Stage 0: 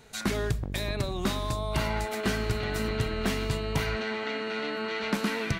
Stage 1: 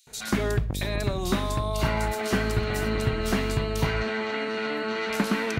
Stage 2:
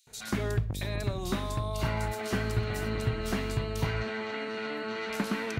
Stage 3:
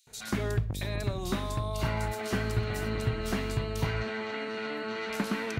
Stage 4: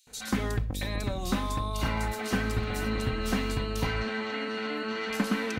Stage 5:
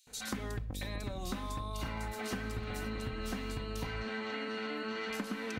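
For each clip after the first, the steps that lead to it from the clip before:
bands offset in time highs, lows 70 ms, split 3.5 kHz; trim +3.5 dB
peaking EQ 110 Hz +6.5 dB 0.26 oct; trim -6 dB
no audible change
comb 3.9 ms, depth 51%; trim +1.5 dB
compression, threshold -32 dBFS, peak gain reduction 10 dB; trim -2.5 dB

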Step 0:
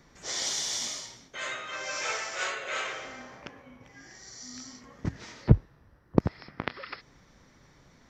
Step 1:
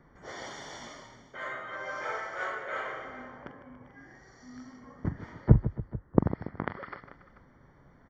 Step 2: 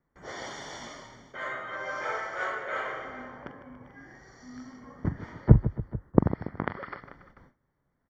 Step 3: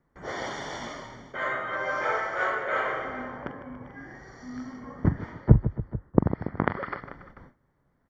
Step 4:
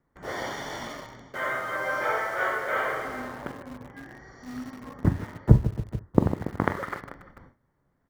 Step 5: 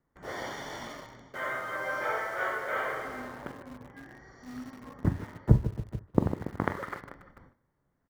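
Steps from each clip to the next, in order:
Savitzky-Golay filter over 41 samples; on a send: multi-tap echo 43/44/152/283/438 ms -13/-16.5/-13/-18/-18.5 dB
gate with hold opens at -46 dBFS; trim +2.5 dB
treble shelf 4.2 kHz -9 dB; gain riding within 4 dB 0.5 s; trim +2.5 dB
reverberation, pre-delay 3 ms, DRR 11.5 dB; in parallel at -11 dB: bit crusher 6-bit; on the sum: trim -2 dB
speakerphone echo 150 ms, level -21 dB; trim -4.5 dB

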